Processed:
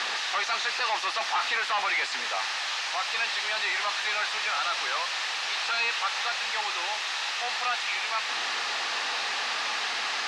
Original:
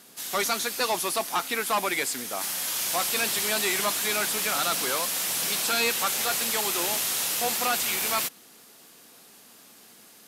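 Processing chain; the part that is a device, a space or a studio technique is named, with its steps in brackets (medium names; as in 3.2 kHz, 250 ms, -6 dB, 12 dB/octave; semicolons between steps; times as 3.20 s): home computer beeper (one-bit comparator; cabinet simulation 710–5300 Hz, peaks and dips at 830 Hz +7 dB, 1.2 kHz +5 dB, 1.8 kHz +7 dB, 2.6 kHz +5 dB, 3.9 kHz +3 dB)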